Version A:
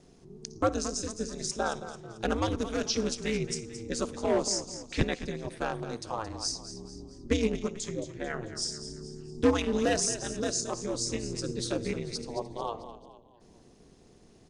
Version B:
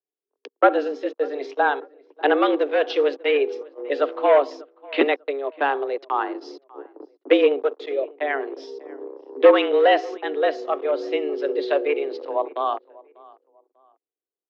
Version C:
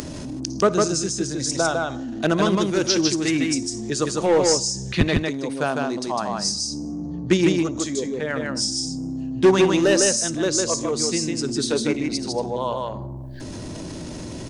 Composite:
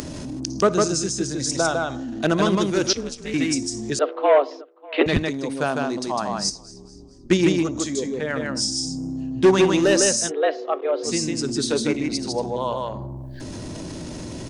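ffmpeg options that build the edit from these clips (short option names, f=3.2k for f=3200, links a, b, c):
-filter_complex "[0:a]asplit=2[a][b];[1:a]asplit=2[c][d];[2:a]asplit=5[e][f][g][h][i];[e]atrim=end=2.932[j];[a]atrim=start=2.928:end=3.342[k];[f]atrim=start=3.338:end=3.992[l];[c]atrim=start=3.988:end=5.062[m];[g]atrim=start=5.058:end=6.502[n];[b]atrim=start=6.498:end=7.302[o];[h]atrim=start=7.298:end=10.32[p];[d]atrim=start=10.26:end=11.09[q];[i]atrim=start=11.03[r];[j][k]acrossfade=d=0.004:c1=hsin:c2=hsin[s];[s][l]acrossfade=d=0.004:c1=hsin:c2=hsin[t];[t][m]acrossfade=d=0.004:c1=hsin:c2=hsin[u];[u][n]acrossfade=d=0.004:c1=hsin:c2=hsin[v];[v][o]acrossfade=d=0.004:c1=hsin:c2=hsin[w];[w][p]acrossfade=d=0.004:c1=hsin:c2=hsin[x];[x][q]acrossfade=d=0.06:c1=tri:c2=tri[y];[y][r]acrossfade=d=0.06:c1=tri:c2=tri"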